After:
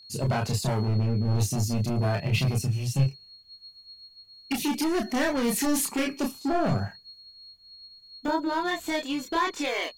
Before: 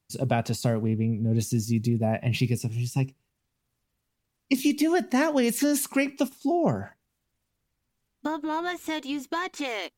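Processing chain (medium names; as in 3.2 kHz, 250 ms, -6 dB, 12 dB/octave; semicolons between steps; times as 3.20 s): hard clipper -24 dBFS, distortion -9 dB; whistle 4.3 kHz -49 dBFS; chorus voices 6, 0.22 Hz, delay 29 ms, depth 1.4 ms; trim +5.5 dB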